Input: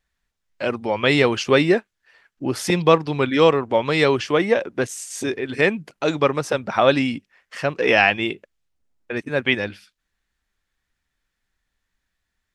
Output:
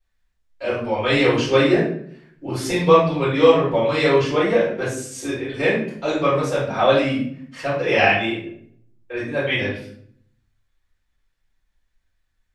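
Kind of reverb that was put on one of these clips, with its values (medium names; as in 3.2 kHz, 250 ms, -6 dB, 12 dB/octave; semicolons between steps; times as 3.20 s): simulated room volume 95 m³, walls mixed, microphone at 4.3 m; trim -15 dB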